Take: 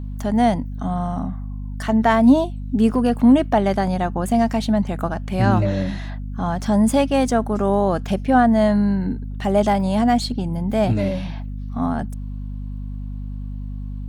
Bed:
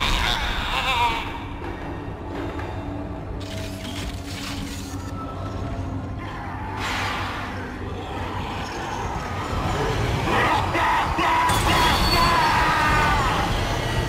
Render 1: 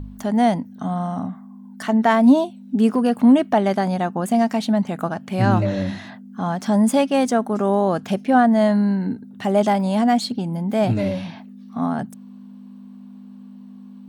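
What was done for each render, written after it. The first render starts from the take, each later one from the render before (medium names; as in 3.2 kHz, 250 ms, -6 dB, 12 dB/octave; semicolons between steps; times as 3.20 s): de-hum 50 Hz, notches 3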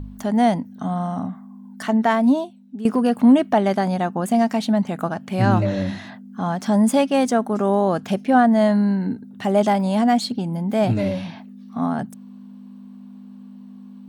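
1.86–2.85 s: fade out, to -15.5 dB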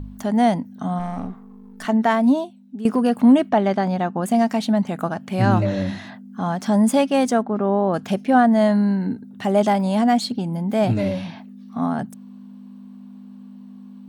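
0.99–1.85 s: partial rectifier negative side -7 dB; 3.49–4.23 s: distance through air 84 m; 7.42–7.94 s: distance through air 370 m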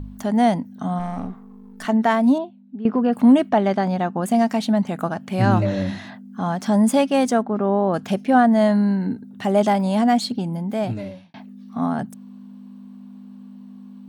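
2.38–3.13 s: distance through air 330 m; 10.44–11.34 s: fade out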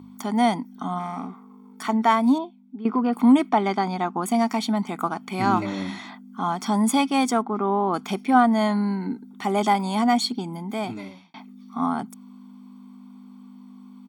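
Chebyshev high-pass 360 Hz, order 2; comb 0.9 ms, depth 79%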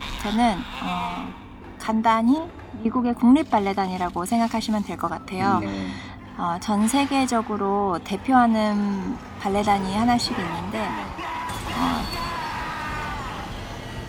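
add bed -10.5 dB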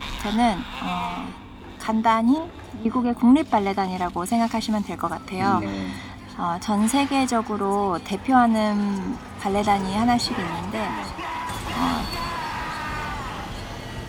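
feedback echo behind a high-pass 837 ms, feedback 82%, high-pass 3.2 kHz, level -16 dB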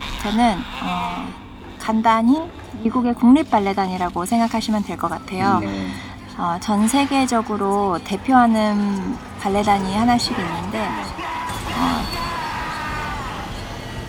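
trim +3.5 dB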